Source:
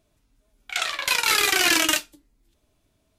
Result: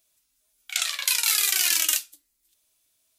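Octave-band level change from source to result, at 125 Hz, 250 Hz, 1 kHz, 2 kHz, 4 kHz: under -25 dB, under -20 dB, -12.5 dB, -7.5 dB, -2.5 dB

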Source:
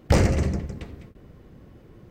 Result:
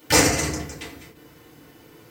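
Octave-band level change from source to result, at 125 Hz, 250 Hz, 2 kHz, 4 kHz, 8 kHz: -7.0 dB, +0.5 dB, +10.0 dB, +13.0 dB, +17.0 dB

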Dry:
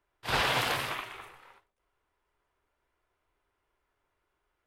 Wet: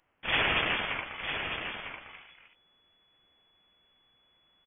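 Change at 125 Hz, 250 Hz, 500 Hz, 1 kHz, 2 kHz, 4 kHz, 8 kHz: -2.0 dB, +2.0 dB, -0.5 dB, -2.0 dB, +4.0 dB, +2.0 dB, under -35 dB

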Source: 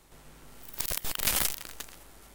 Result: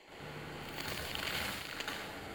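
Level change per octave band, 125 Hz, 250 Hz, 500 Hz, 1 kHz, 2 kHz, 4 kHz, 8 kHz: -0.5 dB, +1.5 dB, +0.5 dB, -0.5 dB, -0.5 dB, -4.0 dB, -16.0 dB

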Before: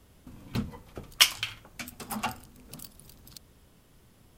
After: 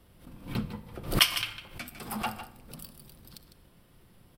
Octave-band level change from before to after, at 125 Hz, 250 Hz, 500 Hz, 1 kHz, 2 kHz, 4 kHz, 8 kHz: +3.0 dB, +2.0 dB, +4.0 dB, +0.5 dB, -0.5 dB, -1.5 dB, -4.5 dB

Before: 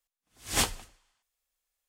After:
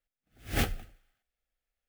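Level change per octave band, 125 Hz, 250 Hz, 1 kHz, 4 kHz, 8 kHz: +5.5 dB, +3.0 dB, -4.5 dB, -7.5 dB, -12.5 dB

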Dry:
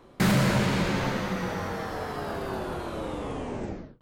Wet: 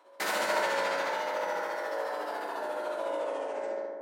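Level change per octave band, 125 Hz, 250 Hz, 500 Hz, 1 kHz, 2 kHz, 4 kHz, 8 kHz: under -30 dB, -17.5 dB, +1.0 dB, +0.5 dB, -0.5 dB, -3.5 dB, -3.5 dB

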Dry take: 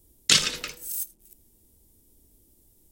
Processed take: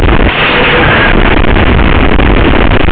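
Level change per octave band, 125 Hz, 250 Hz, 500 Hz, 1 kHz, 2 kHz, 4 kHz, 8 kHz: +37.0 dB, +36.0 dB, +36.5 dB, +34.5 dB, +27.0 dB, +12.5 dB, under -15 dB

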